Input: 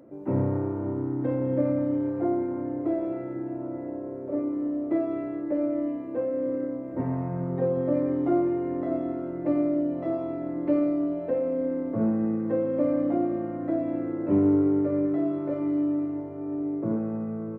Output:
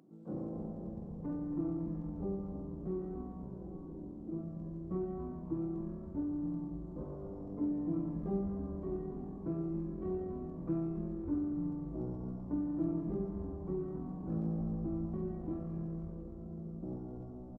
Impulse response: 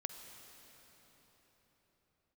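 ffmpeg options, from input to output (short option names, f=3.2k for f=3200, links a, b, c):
-filter_complex "[0:a]highpass=550,asetrate=24750,aresample=44100,atempo=1.7818,asplit=8[a][b][c][d][e][f][g][h];[b]adelay=278,afreqshift=-120,volume=-10dB[i];[c]adelay=556,afreqshift=-240,volume=-14.6dB[j];[d]adelay=834,afreqshift=-360,volume=-19.2dB[k];[e]adelay=1112,afreqshift=-480,volume=-23.7dB[l];[f]adelay=1390,afreqshift=-600,volume=-28.3dB[m];[g]adelay=1668,afreqshift=-720,volume=-32.9dB[n];[h]adelay=1946,afreqshift=-840,volume=-37.5dB[o];[a][i][j][k][l][m][n][o]amix=inputs=8:normalize=0,volume=-4.5dB"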